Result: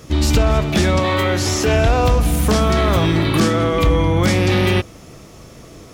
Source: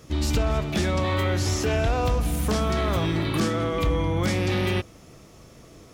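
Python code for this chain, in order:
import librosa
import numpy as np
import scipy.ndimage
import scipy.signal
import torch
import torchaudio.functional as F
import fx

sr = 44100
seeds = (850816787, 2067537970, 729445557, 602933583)

y = fx.low_shelf(x, sr, hz=100.0, db=-10.5, at=(0.99, 1.68))
y = y * 10.0 ** (8.5 / 20.0)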